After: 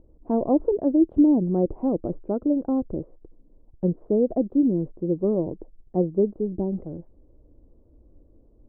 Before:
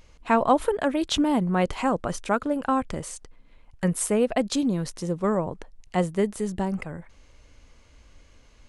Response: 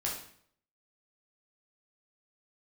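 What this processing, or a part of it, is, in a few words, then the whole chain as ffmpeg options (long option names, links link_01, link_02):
under water: -af "lowpass=frequency=620:width=0.5412,lowpass=frequency=620:width=1.3066,equalizer=frequency=330:width_type=o:width=0.56:gain=10,volume=-1dB"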